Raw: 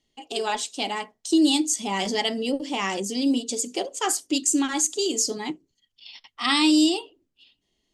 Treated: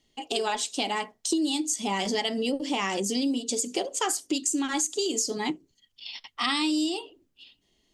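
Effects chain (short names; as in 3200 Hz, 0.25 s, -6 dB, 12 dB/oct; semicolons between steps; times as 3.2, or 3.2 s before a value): compressor 6:1, threshold -29 dBFS, peak gain reduction 13 dB; gain +4.5 dB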